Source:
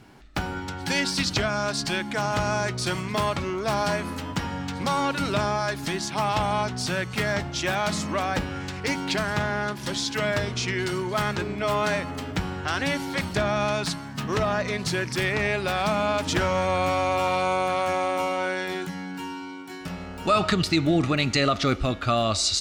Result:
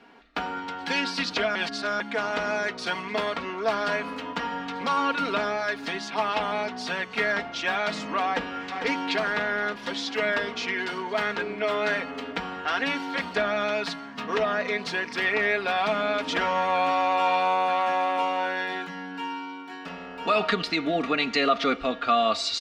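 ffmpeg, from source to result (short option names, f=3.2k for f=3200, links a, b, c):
-filter_complex "[0:a]asplit=2[a][b];[b]afade=t=in:st=8.26:d=0.01,afade=t=out:st=8.82:d=0.01,aecho=0:1:450|900|1350|1800|2250|2700|3150|3600:0.446684|0.26801|0.160806|0.0964837|0.0578902|0.0347341|0.0208405|0.0125043[c];[a][c]amix=inputs=2:normalize=0,asplit=3[d][e][f];[d]atrim=end=1.552[g];[e]atrim=start=1.548:end=2.002,asetpts=PTS-STARTPTS,areverse[h];[f]atrim=start=1.998[i];[g][h]acrossfade=d=0.004:c1=hsin:c2=hsin[j];[j][i]acrossfade=d=0.004:c1=hsin:c2=hsin,acrossover=split=270 4300:gain=0.1 1 0.1[k][l][m];[k][l][m]amix=inputs=3:normalize=0,aecho=1:1:4.3:0.7"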